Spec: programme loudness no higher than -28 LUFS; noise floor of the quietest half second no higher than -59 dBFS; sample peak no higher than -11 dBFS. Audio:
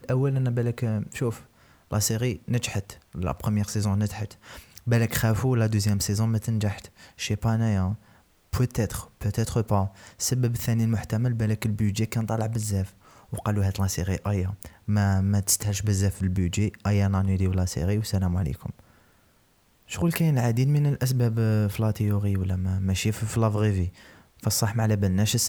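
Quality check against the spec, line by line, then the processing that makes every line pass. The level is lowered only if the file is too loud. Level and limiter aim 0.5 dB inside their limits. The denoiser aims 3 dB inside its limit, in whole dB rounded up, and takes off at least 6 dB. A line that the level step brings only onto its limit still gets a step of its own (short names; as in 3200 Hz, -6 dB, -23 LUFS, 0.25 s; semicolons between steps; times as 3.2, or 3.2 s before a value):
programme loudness -26.0 LUFS: fail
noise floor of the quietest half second -62 dBFS: OK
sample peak -7.5 dBFS: fail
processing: gain -2.5 dB; limiter -11.5 dBFS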